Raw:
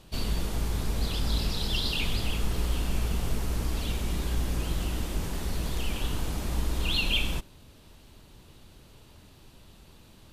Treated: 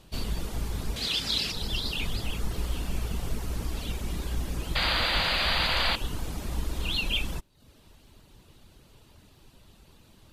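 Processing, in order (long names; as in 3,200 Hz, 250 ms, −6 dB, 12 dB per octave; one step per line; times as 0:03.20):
reverb reduction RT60 0.54 s
0:00.96–0:01.52: meter weighting curve D
0:04.75–0:05.96: sound drawn into the spectrogram noise 480–4,900 Hz −26 dBFS
level −1 dB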